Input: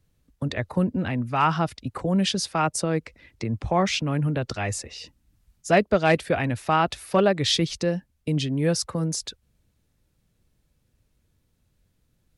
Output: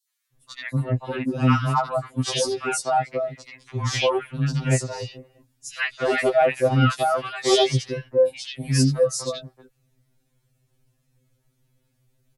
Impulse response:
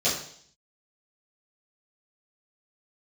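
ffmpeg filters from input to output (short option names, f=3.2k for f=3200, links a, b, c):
-filter_complex "[0:a]acrossover=split=1200|4000[a][b][c];[b]adelay=80[d];[a]adelay=330[e];[e][d][c]amix=inputs=3:normalize=0,afftfilt=real='re*2.45*eq(mod(b,6),0)':imag='im*2.45*eq(mod(b,6),0)':win_size=2048:overlap=0.75,volume=5dB"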